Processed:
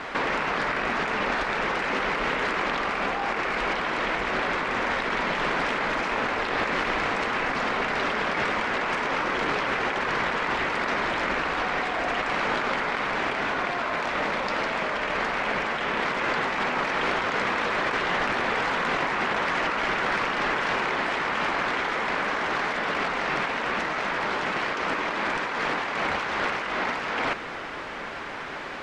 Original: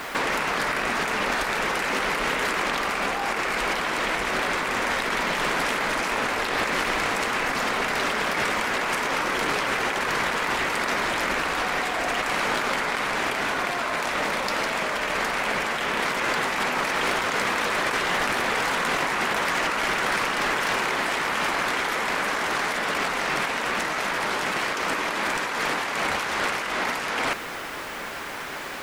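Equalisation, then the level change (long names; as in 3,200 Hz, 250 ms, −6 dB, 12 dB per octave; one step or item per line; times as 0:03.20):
high-frequency loss of the air 110 metres
high-shelf EQ 5,500 Hz −5 dB
0.0 dB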